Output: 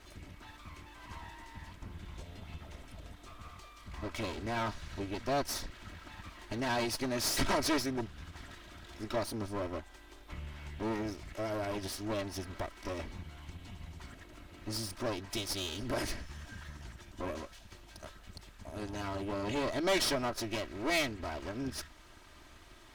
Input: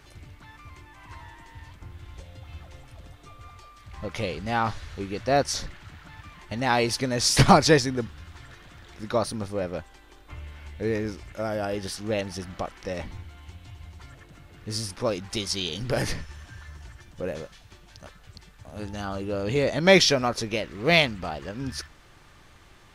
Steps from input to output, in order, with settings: comb filter that takes the minimum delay 3.1 ms; in parallel at +1.5 dB: compression, threshold -38 dBFS, peak gain reduction 23 dB; on the sum: saturation -16.5 dBFS, distortion -12 dB; endings held to a fixed fall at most 300 dB/s; trim -8 dB

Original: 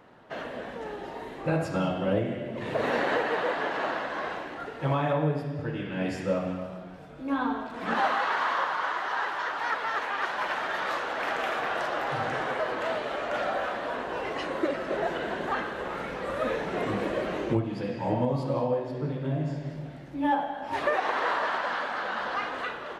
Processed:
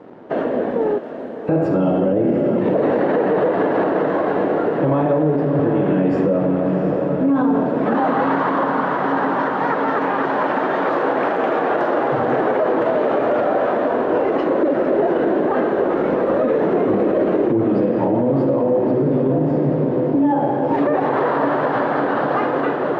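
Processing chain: 0.98–1.49 s: differentiator; in parallel at -1 dB: compression, threshold -37 dBFS, peak gain reduction 15.5 dB; on the sum: crossover distortion -54 dBFS; band-pass filter 340 Hz, Q 1.3; on a send: echo that smears into a reverb 713 ms, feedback 73%, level -9.5 dB; on the sum: loudness maximiser +27 dB; trim -8.5 dB

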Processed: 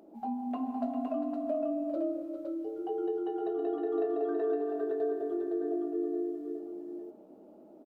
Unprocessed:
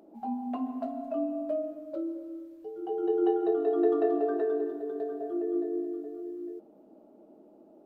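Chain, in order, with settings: compression, threshold -30 dBFS, peak gain reduction 10 dB; on a send: multi-tap echo 401/513 ms -9/-3.5 dB

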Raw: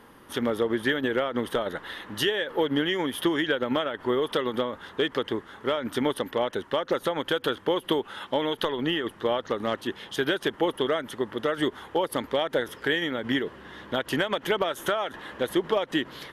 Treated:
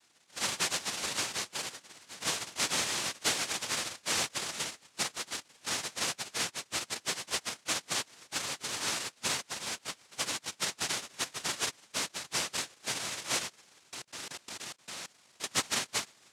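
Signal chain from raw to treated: loudest bins only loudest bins 1; noise-vocoded speech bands 1; 13.78–15.44 s: level held to a coarse grid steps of 21 dB

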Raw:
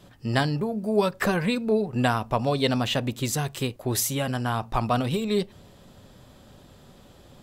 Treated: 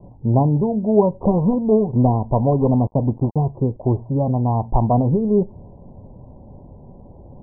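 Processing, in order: 1.22–3.52 s: dead-time distortion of 0.24 ms; steep low-pass 1 kHz 96 dB/octave; bass shelf 140 Hz +7 dB; trim +6.5 dB

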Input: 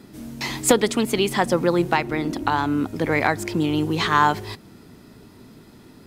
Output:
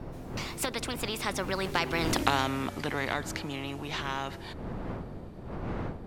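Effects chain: Doppler pass-by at 2.19 s, 31 m/s, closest 4.9 m; wind noise 160 Hz -42 dBFS; treble shelf 4.4 kHz -9 dB; spectrum-flattening compressor 2:1

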